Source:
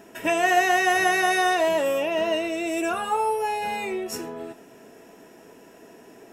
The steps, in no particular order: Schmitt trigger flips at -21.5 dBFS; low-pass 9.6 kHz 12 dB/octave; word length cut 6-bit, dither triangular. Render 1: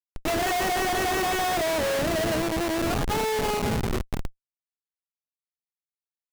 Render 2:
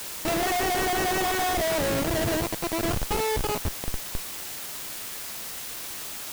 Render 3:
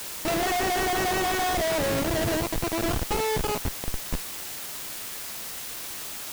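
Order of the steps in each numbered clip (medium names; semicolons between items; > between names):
low-pass > word length cut > Schmitt trigger; low-pass > Schmitt trigger > word length cut; Schmitt trigger > low-pass > word length cut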